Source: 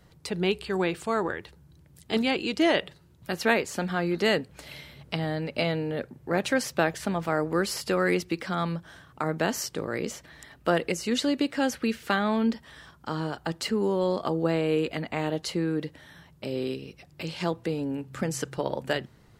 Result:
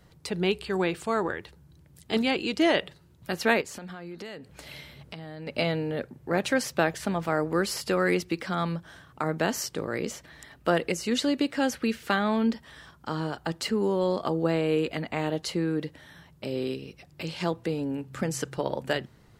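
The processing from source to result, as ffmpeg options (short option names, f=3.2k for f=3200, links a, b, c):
-filter_complex "[0:a]asettb=1/sr,asplit=3[a][b][c];[a]atrim=end=3.614[d];[b]atrim=start=3.61:end=5.47,asetpts=PTS-STARTPTS,afade=t=in:d=0.004:c=qsin,afade=t=out:st=1.856:d=0.004:c=qsin,acompressor=threshold=-37dB:ratio=6:attack=3.2:release=140:knee=1:detection=peak[e];[c]atrim=start=5.466[f];[d][e]acrossfade=d=0.004:c1=hsin:c2=qsin[g];[g][f]acrossfade=d=0.004:c1=qsin:c2=hsin"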